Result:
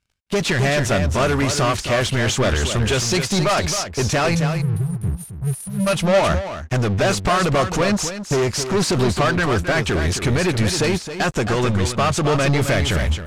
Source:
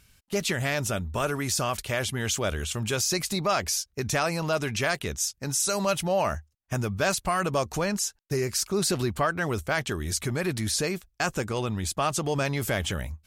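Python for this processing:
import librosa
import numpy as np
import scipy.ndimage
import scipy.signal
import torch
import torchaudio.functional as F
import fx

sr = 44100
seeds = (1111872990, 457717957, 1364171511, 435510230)

y = fx.spec_erase(x, sr, start_s=4.35, length_s=1.52, low_hz=200.0, high_hz=8900.0)
y = fx.leveller(y, sr, passes=5)
y = fx.air_absorb(y, sr, metres=58.0)
y = y + 10.0 ** (-7.0 / 20.0) * np.pad(y, (int(267 * sr / 1000.0), 0))[:len(y)]
y = fx.upward_expand(y, sr, threshold_db=-29.0, expansion=1.5)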